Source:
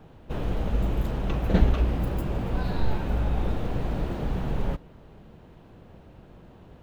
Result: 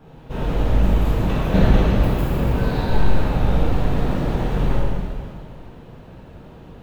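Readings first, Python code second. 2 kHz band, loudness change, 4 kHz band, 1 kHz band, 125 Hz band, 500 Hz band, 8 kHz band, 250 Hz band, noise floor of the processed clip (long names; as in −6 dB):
+9.0 dB, +7.5 dB, +8.5 dB, +8.5 dB, +7.5 dB, +8.5 dB, can't be measured, +8.0 dB, −42 dBFS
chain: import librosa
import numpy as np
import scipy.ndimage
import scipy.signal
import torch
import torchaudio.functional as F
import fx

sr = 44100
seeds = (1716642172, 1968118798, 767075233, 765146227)

y = fx.rev_plate(x, sr, seeds[0], rt60_s=2.3, hf_ratio=1.0, predelay_ms=0, drr_db=-8.0)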